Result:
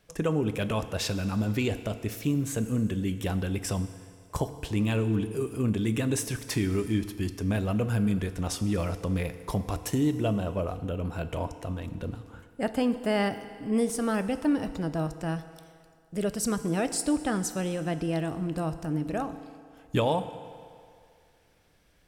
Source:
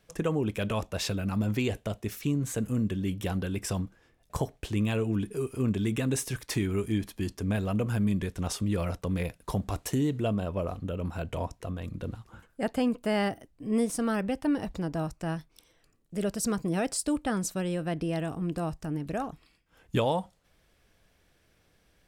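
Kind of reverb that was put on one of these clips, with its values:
feedback delay network reverb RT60 2.3 s, low-frequency decay 0.75×, high-frequency decay 0.85×, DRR 10.5 dB
level +1 dB

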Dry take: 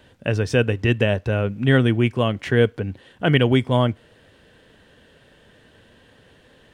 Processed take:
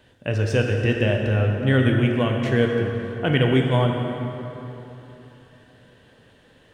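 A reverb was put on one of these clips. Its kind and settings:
dense smooth reverb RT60 3.4 s, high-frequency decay 0.6×, DRR 1 dB
level −4 dB

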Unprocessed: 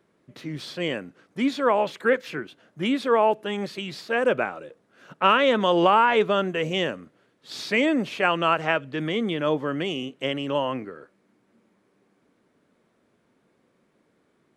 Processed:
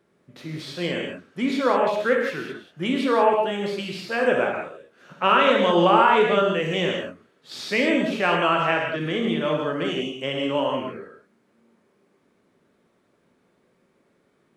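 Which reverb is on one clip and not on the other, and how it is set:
reverb whose tail is shaped and stops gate 210 ms flat, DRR −0.5 dB
level −1.5 dB

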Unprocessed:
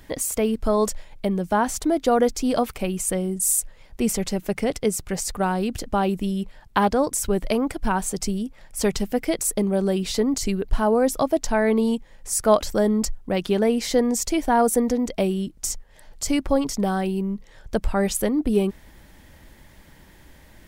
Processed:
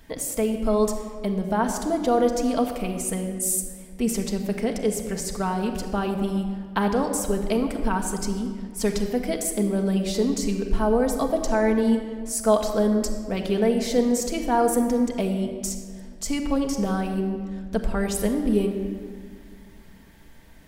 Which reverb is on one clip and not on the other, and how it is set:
rectangular room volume 3,300 cubic metres, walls mixed, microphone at 1.6 metres
level −4.5 dB

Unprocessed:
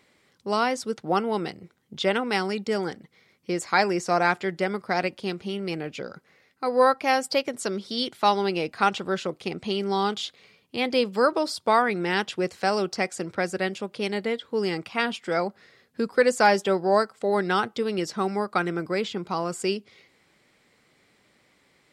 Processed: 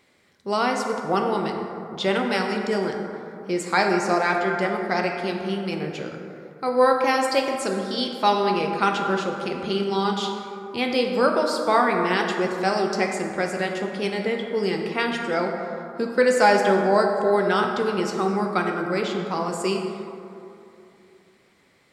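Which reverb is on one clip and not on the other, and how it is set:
dense smooth reverb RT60 2.8 s, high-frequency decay 0.35×, DRR 1.5 dB

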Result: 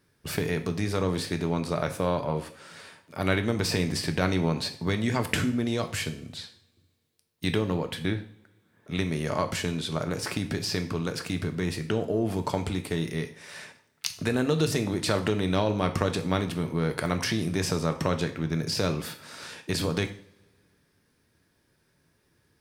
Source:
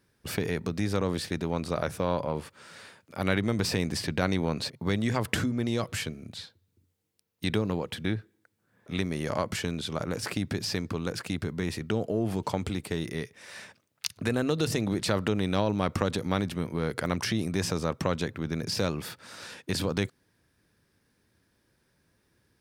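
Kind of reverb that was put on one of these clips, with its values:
coupled-rooms reverb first 0.49 s, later 2.1 s, from −25 dB, DRR 6.5 dB
level +1 dB

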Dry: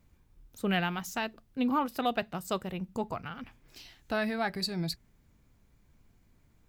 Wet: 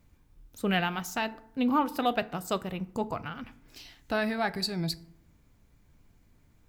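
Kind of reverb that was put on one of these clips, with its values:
feedback delay network reverb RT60 0.7 s, low-frequency decay 1.25×, high-frequency decay 0.5×, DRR 14 dB
level +2 dB

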